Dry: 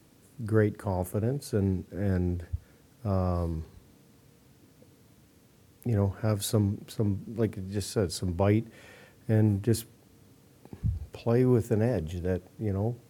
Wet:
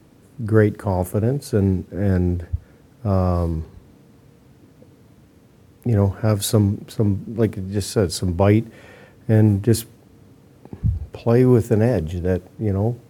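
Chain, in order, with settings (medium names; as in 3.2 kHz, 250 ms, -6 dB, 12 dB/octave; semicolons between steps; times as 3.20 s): tape noise reduction on one side only decoder only; trim +9 dB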